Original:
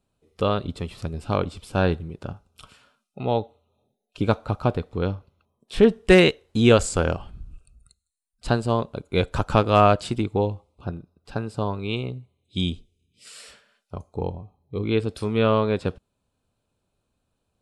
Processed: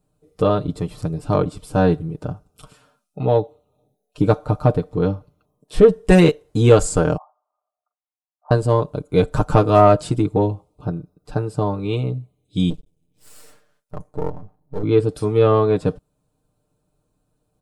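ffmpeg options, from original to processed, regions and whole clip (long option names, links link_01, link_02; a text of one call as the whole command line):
ffmpeg -i in.wav -filter_complex "[0:a]asettb=1/sr,asplit=3[link_01][link_02][link_03];[link_01]atrim=end=7.174[link_04];[link_02]atrim=start=7.17:end=8.51,asetpts=PTS-STARTPTS,afade=type=in:duration=0.004:curve=qsin,afade=type=out:start_time=1.336:duration=0.004:curve=qsin,aeval=exprs='if(lt(val(0),0),0.708*val(0),val(0))':channel_layout=same,asuperpass=centerf=870:order=8:qfactor=1.6[link_05];[link_03]atrim=start=8.506[link_06];[link_04][link_05]acrossfade=duration=0.004:curve1=hsin:curve2=qsin[link_07];[link_07][link_06]acrossfade=duration=0.004:curve1=qsin:curve2=hsin,asettb=1/sr,asplit=3[link_08][link_09][link_10];[link_08]atrim=end=12.704[link_11];[link_09]atrim=start=12.7:end=14.83,asetpts=PTS-STARTPTS,afade=type=in:duration=0.004:curve=qsin,afade=type=out:start_time=2.126:duration=0.004:curve=qsin,equalizer=frequency=4900:width_type=o:width=1.6:gain=-4,aeval=exprs='max(val(0),0)':channel_layout=same[link_12];[link_10]atrim=start=14.826[link_13];[link_11][link_12]acrossfade=duration=0.004:curve1=hsin:curve2=qsin[link_14];[link_14][link_13]acrossfade=duration=0.004:curve1=qsin:curve2=hsin,equalizer=frequency=2800:width_type=o:width=2.1:gain=-11,aecho=1:1:6.6:0.74,acontrast=33" out.wav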